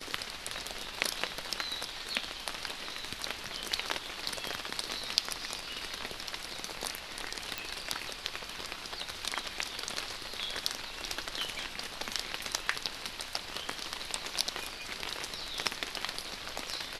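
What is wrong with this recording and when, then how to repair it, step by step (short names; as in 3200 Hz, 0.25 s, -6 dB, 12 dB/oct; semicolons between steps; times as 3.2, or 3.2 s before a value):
7.58 pop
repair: de-click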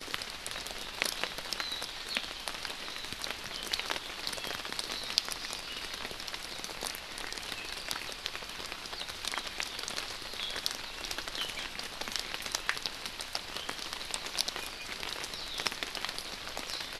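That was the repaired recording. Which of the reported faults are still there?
none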